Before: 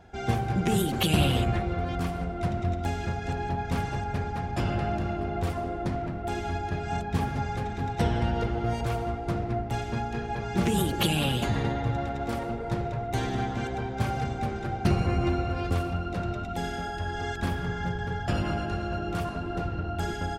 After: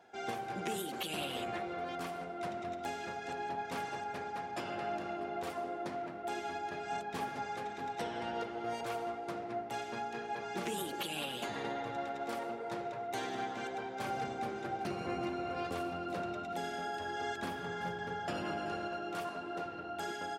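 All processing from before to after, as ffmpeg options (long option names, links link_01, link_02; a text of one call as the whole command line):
ffmpeg -i in.wav -filter_complex "[0:a]asettb=1/sr,asplit=3[link_01][link_02][link_03];[link_01]atrim=end=14.044[link_04];[link_02]atrim=start=14.04:end=18.88,asetpts=PTS-STARTPTS,afade=type=in:duration=0.004:curve=qsin,afade=type=out:start_time=4.836:duration=0.004:curve=qsin,lowshelf=frequency=350:gain=6.5,aecho=1:1:379:0.211,atrim=end_sample=213444[link_05];[link_03]atrim=start=18.876[link_06];[link_04][link_05]acrossfade=duration=0.004:curve1=hsin:curve2=qsin[link_07];[link_07][link_06]acrossfade=duration=0.004:curve1=qsin:curve2=hsin,highpass=360,alimiter=limit=-22dB:level=0:latency=1:release=320,volume=-5dB" out.wav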